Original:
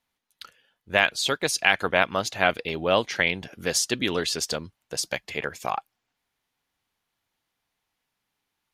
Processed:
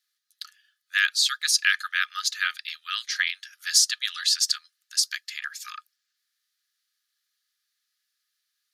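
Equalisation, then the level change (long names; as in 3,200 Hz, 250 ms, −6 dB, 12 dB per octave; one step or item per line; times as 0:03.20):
Chebyshev high-pass with heavy ripple 1,200 Hz, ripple 9 dB
high-shelf EQ 4,000 Hz +11 dB
+1.5 dB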